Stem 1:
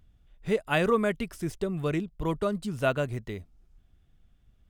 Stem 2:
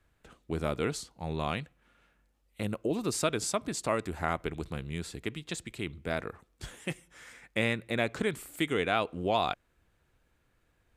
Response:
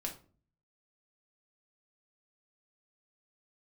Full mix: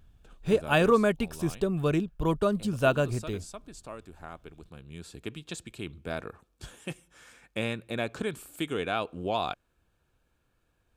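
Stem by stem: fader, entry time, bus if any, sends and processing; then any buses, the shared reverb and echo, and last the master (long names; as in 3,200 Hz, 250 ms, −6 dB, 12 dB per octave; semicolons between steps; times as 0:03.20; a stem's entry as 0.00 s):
+2.5 dB, 0.00 s, no send, no processing
−1.5 dB, 0.00 s, no send, automatic ducking −11 dB, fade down 1.15 s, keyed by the first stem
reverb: not used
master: notch filter 2,000 Hz, Q 5.3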